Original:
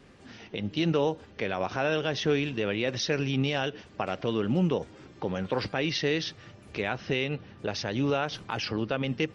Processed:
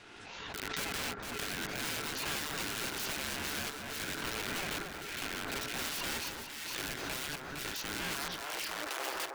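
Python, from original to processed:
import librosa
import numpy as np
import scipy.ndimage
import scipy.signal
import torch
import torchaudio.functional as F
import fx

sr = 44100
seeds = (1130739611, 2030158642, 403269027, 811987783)

y = (np.mod(10.0 ** (27.0 / 20.0) * x + 1.0, 2.0) - 1.0) / 10.0 ** (27.0 / 20.0)
y = scipy.signal.sosfilt(scipy.signal.cheby1(6, 3, 450.0, 'highpass', fs=sr, output='sos'), y)
y = fx.ring_mod(y, sr, carrier_hz=fx.steps((0.0, 890.0), (8.15, 150.0)))
y = fx.echo_alternate(y, sr, ms=230, hz=1600.0, feedback_pct=62, wet_db=-4.0)
y = fx.pre_swell(y, sr, db_per_s=27.0)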